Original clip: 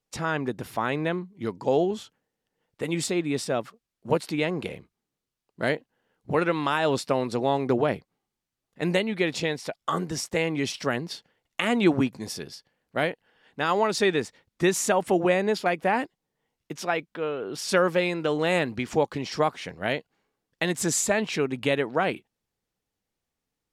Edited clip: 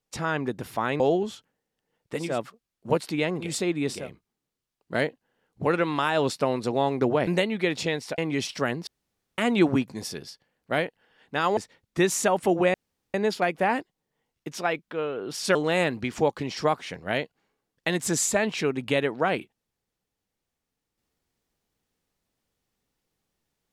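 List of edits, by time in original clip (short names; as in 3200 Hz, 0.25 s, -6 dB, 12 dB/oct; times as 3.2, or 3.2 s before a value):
1–1.68 cut
2.95–3.47 move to 4.66, crossfade 0.24 s
7.95–8.84 cut
9.75–10.43 cut
11.12–11.63 room tone
13.82–14.21 cut
15.38 insert room tone 0.40 s
17.79–18.3 cut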